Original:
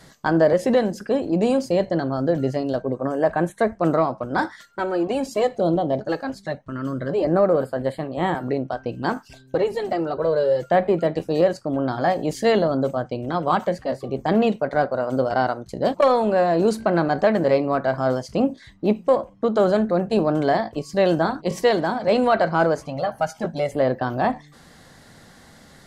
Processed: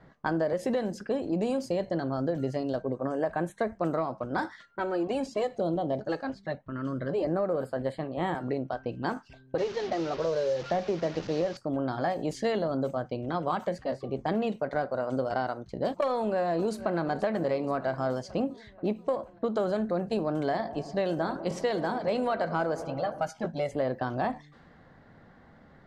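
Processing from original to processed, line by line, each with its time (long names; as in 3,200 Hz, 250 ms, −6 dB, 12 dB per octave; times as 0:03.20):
0:09.58–0:11.57: linear delta modulator 32 kbit/s, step −29 dBFS
0:16.10–0:16.98: delay throw 480 ms, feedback 65%, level −17.5 dB
0:20.48–0:23.29: delay with a low-pass on its return 99 ms, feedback 74%, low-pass 990 Hz, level −15 dB
whole clip: low-pass that shuts in the quiet parts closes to 1,500 Hz, open at −17.5 dBFS; downward compressor, threshold −19 dBFS; level −5.5 dB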